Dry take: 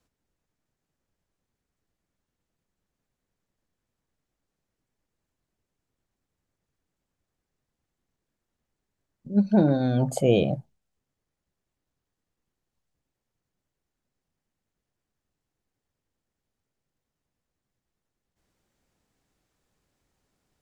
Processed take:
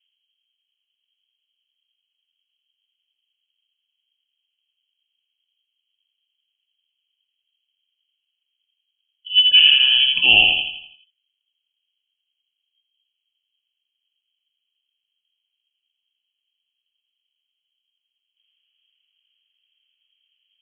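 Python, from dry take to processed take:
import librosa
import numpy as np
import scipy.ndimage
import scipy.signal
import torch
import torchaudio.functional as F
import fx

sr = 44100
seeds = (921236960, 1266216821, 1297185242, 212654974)

p1 = fx.env_lowpass(x, sr, base_hz=550.0, full_db=-24.0)
p2 = fx.freq_invert(p1, sr, carrier_hz=3200)
p3 = p2 + fx.echo_feedback(p2, sr, ms=83, feedback_pct=47, wet_db=-4.0, dry=0)
p4 = fx.dynamic_eq(p3, sr, hz=440.0, q=1.1, threshold_db=-44.0, ratio=4.0, max_db=6)
y = p4 * librosa.db_to_amplitude(5.0)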